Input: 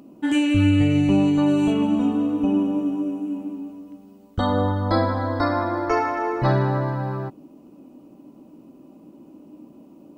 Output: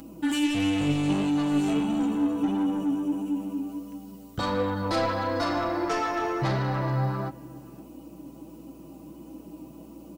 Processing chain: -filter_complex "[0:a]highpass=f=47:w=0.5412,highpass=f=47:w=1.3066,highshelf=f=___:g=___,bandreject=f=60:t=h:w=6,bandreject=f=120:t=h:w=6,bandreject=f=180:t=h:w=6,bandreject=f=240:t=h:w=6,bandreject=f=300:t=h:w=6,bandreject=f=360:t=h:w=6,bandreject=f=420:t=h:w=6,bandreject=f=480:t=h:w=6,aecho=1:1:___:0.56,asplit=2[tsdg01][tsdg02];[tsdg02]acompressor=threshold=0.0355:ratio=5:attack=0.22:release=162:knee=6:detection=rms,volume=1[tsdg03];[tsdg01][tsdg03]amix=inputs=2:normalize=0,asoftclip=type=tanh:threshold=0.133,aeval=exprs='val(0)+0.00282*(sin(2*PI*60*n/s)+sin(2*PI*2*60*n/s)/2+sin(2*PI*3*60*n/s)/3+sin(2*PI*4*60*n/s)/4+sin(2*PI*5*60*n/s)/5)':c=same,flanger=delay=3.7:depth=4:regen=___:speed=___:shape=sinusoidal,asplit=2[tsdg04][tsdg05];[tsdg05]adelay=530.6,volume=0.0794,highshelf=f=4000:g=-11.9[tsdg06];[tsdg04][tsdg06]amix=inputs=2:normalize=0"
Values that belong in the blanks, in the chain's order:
4200, 11.5, 6.1, 65, 1.5